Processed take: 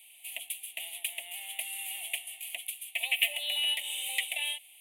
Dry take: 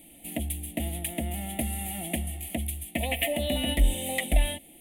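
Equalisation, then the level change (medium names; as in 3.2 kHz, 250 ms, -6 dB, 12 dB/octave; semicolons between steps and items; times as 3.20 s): ladder high-pass 790 Hz, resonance 50%; resonant high shelf 1.9 kHz +10.5 dB, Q 3; -3.5 dB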